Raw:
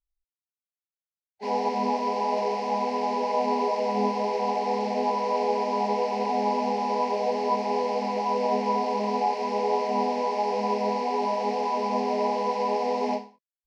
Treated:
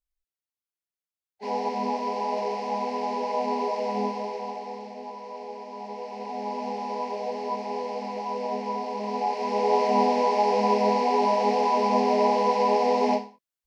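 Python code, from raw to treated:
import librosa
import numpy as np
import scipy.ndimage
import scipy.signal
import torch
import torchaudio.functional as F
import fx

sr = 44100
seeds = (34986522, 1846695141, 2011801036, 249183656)

y = fx.gain(x, sr, db=fx.line((3.97, -2.0), (4.97, -13.0), (5.69, -13.0), (6.69, -5.0), (8.94, -5.0), (9.84, 4.0)))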